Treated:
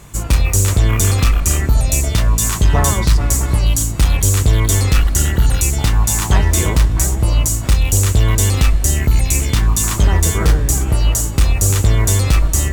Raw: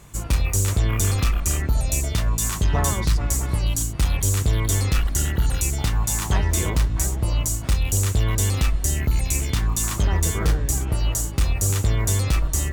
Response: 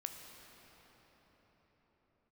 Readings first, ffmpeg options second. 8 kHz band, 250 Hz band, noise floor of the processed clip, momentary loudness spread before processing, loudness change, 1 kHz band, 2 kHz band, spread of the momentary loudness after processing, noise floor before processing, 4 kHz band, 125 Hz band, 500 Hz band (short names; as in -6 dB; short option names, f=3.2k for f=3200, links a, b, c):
+7.0 dB, +7.0 dB, -21 dBFS, 2 LU, +7.5 dB, +7.0 dB, +7.0 dB, 2 LU, -28 dBFS, +7.0 dB, +7.5 dB, +7.0 dB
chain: -filter_complex "[0:a]asplit=2[a][b];[1:a]atrim=start_sample=2205[c];[b][c]afir=irnorm=-1:irlink=0,volume=-8dB[d];[a][d]amix=inputs=2:normalize=0,volume=5dB"